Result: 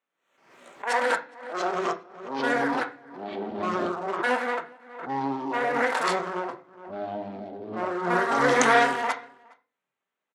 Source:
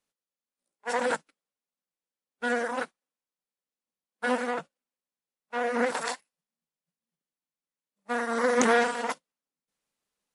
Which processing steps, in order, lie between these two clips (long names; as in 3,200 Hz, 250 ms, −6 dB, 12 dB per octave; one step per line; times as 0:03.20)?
adaptive Wiener filter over 9 samples
meter weighting curve A
delay with pitch and tempo change per echo 378 ms, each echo −5 semitones, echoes 3
slap from a distant wall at 71 metres, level −26 dB
on a send at −4 dB: convolution reverb RT60 0.40 s, pre-delay 3 ms
on the sum: background raised ahead of every attack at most 77 dB per second
level +3 dB